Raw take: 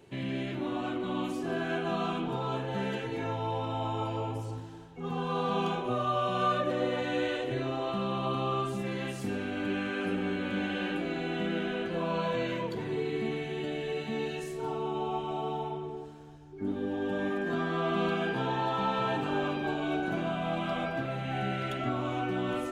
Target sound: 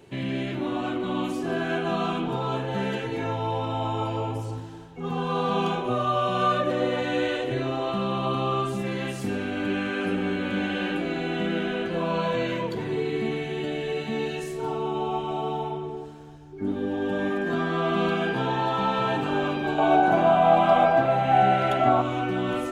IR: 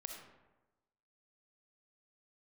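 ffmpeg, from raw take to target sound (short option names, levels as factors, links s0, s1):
-filter_complex "[0:a]asettb=1/sr,asplit=3[s0][s1][s2];[s0]atrim=end=19.784[s3];[s1]atrim=start=19.78:end=22.02,asetpts=PTS-STARTPTS,afade=t=in:d=0.004:c=qsin,afade=t=out:st=2.236:d=0.004:c=qsin,equalizer=f=790:w=1.3:g=14[s4];[s2]atrim=start=22.016[s5];[s3][s4]acrossfade=d=0.004:c1=hsin:c2=qsin[s6];[s6][s5]acrossfade=d=0.004:c1=qsin:c2=hsin,volume=1.78"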